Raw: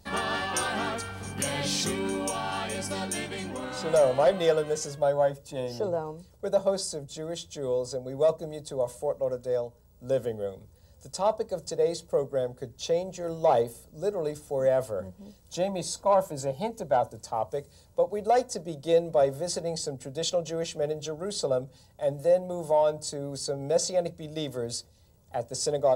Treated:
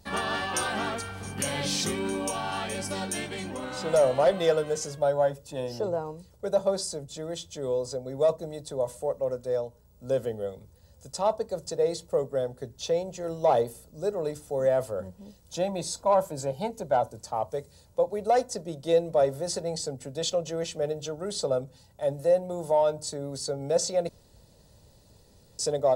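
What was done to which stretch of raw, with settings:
24.09–25.59 room tone

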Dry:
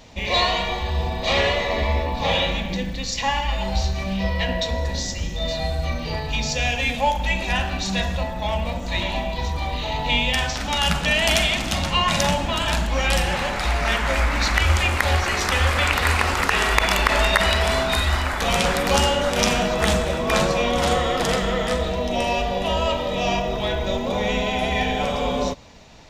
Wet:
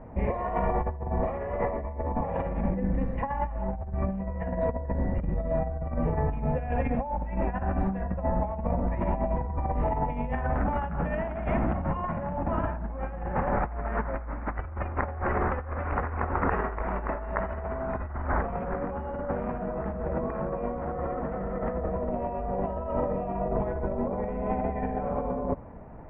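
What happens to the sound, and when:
20.34–21.19 echo throw 0.45 s, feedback 60%, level -10 dB
whole clip: Bessel low-pass 960 Hz, order 8; limiter -16 dBFS; negative-ratio compressor -28 dBFS, ratio -0.5

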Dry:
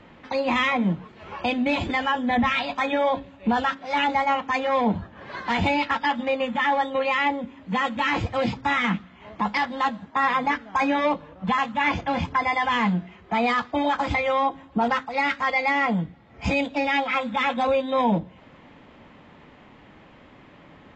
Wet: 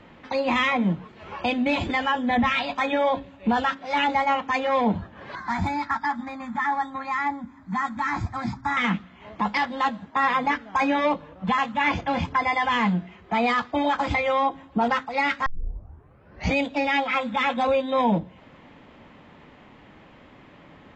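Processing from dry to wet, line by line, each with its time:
5.35–8.77 fixed phaser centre 1200 Hz, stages 4
15.46 tape start 1.10 s

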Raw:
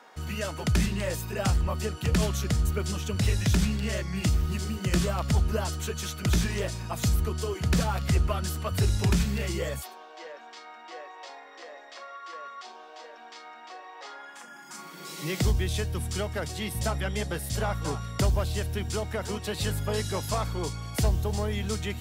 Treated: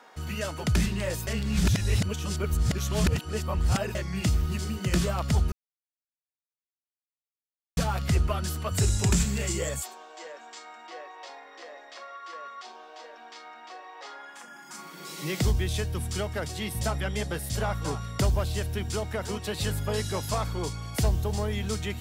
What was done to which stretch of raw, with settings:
1.27–3.95 reverse
5.52–7.77 mute
8.71–10.87 bell 7500 Hz +13 dB 0.44 oct

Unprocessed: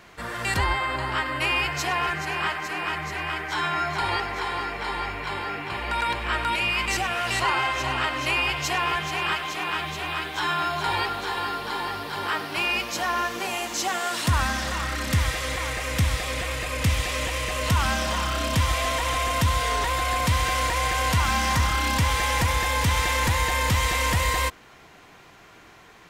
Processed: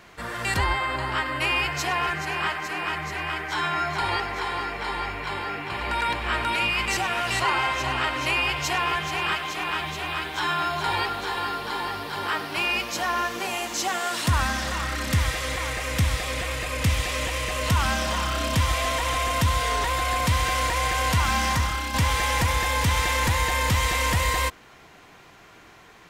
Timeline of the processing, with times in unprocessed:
5.24–6.12 echo throw 0.54 s, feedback 80%, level -7 dB
21.45–21.94 fade out, to -7 dB

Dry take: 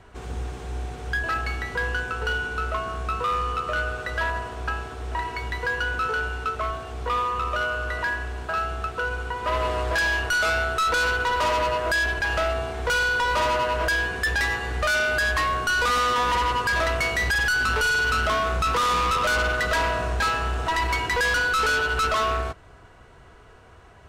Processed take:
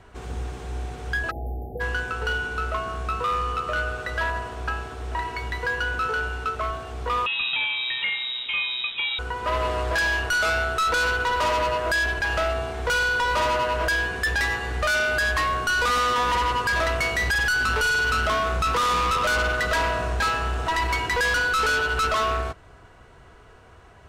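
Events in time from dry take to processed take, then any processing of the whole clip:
1.31–1.8 spectral delete 840–11000 Hz
7.26–9.19 inverted band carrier 3800 Hz

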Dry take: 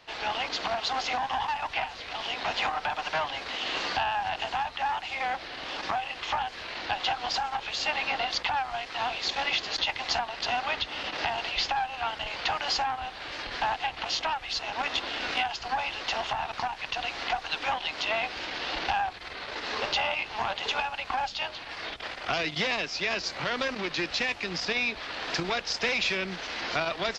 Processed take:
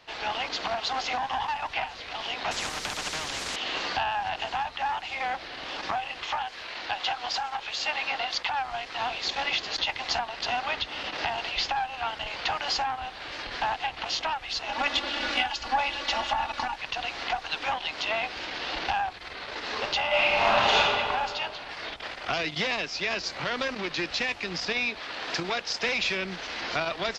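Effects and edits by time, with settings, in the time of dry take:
2.51–3.56 spectral compressor 4:1
6.26–8.58 low shelf 370 Hz -7.5 dB
14.69–16.76 comb 3.5 ms, depth 91%
20.07–20.77 reverb throw, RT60 2.3 s, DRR -9.5 dB
24.89–25.86 low shelf 91 Hz -9.5 dB

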